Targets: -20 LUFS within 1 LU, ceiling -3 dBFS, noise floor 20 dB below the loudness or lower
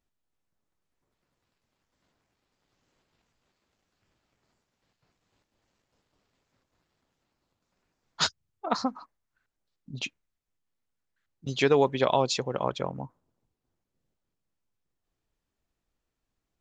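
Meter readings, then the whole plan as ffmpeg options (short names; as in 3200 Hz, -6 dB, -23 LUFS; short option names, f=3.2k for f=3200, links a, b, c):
loudness -28.0 LUFS; peak -8.5 dBFS; loudness target -20.0 LUFS
-> -af "volume=8dB,alimiter=limit=-3dB:level=0:latency=1"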